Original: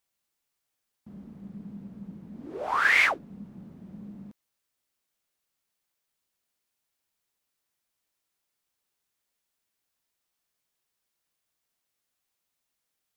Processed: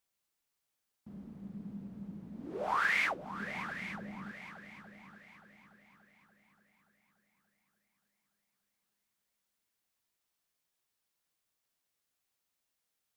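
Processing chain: compressor, threshold -24 dBFS, peak gain reduction 7.5 dB; multi-head echo 0.289 s, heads second and third, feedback 43%, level -12.5 dB; gain -3 dB

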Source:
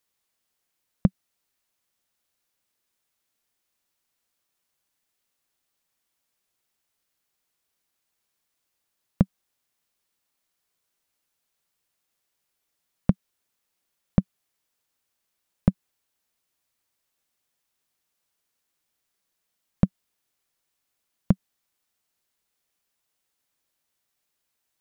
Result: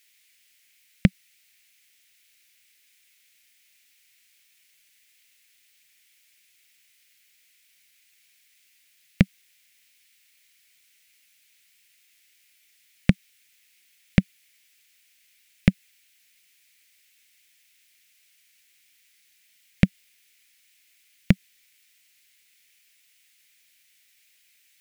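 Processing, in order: resonant high shelf 1500 Hz +13 dB, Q 3; gain +2.5 dB

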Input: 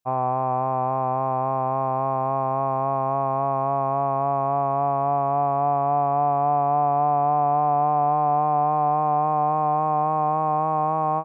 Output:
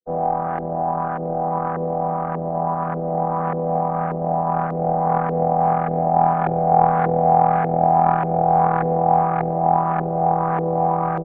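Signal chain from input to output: chord vocoder minor triad, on E3; comb 6.4 ms, depth 43%; added harmonics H 3 -14 dB, 8 -30 dB, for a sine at -9 dBFS; LFO low-pass saw up 1.7 Hz 420–1600 Hz; gain +4 dB

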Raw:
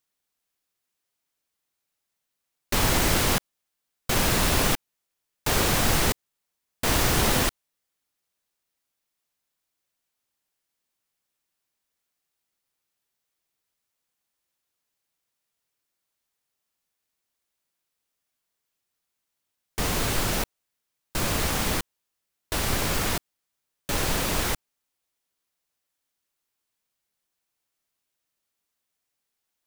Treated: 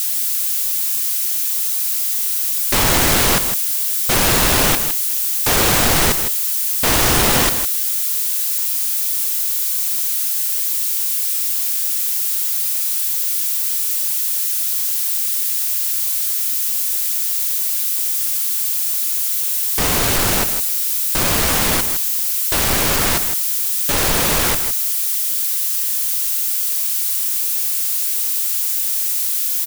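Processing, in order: switching spikes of -25 dBFS; low shelf 220 Hz -4.5 dB; sample leveller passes 2; on a send: echo 0.159 s -10 dB; on the sum: gain +1.5 dB

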